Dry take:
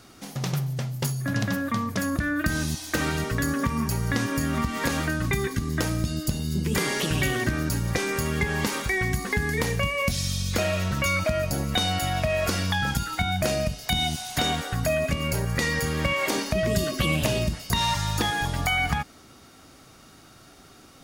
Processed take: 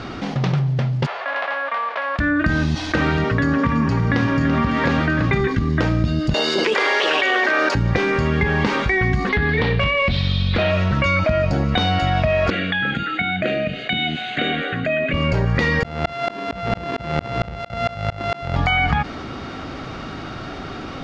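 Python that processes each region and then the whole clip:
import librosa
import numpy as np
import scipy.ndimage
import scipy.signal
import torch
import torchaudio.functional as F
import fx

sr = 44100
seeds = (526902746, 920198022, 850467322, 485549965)

y = fx.envelope_flatten(x, sr, power=0.3, at=(1.05, 2.18), fade=0.02)
y = fx.highpass(y, sr, hz=600.0, slope=24, at=(1.05, 2.18), fade=0.02)
y = fx.spacing_loss(y, sr, db_at_10k=44, at=(1.05, 2.18), fade=0.02)
y = fx.chain(y, sr, fx.highpass(hz=76.0, slope=12),
    fx.resample_bad(factor=2, down='filtered', up='hold'),
    fx.echo_single(ms=335, db=-9.5), at=(3.18, 5.41))
y = fx.chain(y, sr, fx.highpass(hz=460.0, slope=24),
    fx.env_flatten(amount_pct=100), at=(6.34, 7.75))
y = fx.chain(y, sr, fx.high_shelf_res(hz=5000.0, db=-9.5, q=3.0),
    fx.clip_hard(threshold_db=-21.0), at=(9.29, 10.71))
y = fx.chain(y, sr, fx.bandpass_edges(low_hz=270.0, high_hz=5500.0),
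    fx.fixed_phaser(hz=2300.0, stages=4), at=(12.5, 15.14))
y = fx.chain(y, sr, fx.sample_sort(block=64),
    fx.highpass(hz=54.0, slope=12),
    fx.tremolo_decay(direction='swelling', hz=4.4, depth_db=37), at=(15.83, 18.56))
y = scipy.signal.sosfilt(scipy.signal.bessel(4, 2800.0, 'lowpass', norm='mag', fs=sr, output='sos'), y)
y = fx.env_flatten(y, sr, amount_pct=50)
y = F.gain(torch.from_numpy(y), 5.5).numpy()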